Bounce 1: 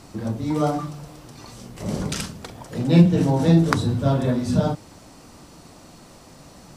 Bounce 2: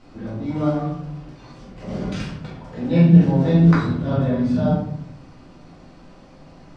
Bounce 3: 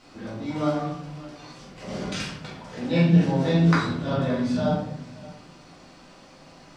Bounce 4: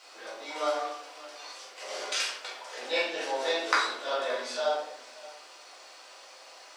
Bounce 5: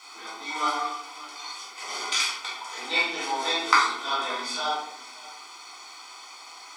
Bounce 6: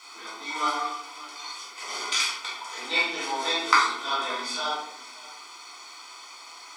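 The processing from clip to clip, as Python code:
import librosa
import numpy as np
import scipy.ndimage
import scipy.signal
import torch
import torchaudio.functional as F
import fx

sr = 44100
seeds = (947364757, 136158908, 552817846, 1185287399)

y1 = scipy.signal.sosfilt(scipy.signal.butter(2, 3500.0, 'lowpass', fs=sr, output='sos'), x)
y1 = fx.room_shoebox(y1, sr, seeds[0], volume_m3=140.0, walls='mixed', distance_m=2.0)
y1 = y1 * librosa.db_to_amplitude(-8.5)
y2 = fx.tilt_eq(y1, sr, slope=2.5)
y2 = y2 + 10.0 ** (-19.5 / 20.0) * np.pad(y2, (int(574 * sr / 1000.0), 0))[:len(y2)]
y3 = scipy.signal.sosfilt(scipy.signal.cheby2(4, 50, 170.0, 'highpass', fs=sr, output='sos'), y2)
y3 = fx.tilt_eq(y3, sr, slope=2.0)
y4 = y3 + 1.0 * np.pad(y3, (int(0.9 * sr / 1000.0), 0))[:len(y3)]
y4 = y4 * librosa.db_to_amplitude(3.0)
y5 = fx.notch(y4, sr, hz=780.0, q=12.0)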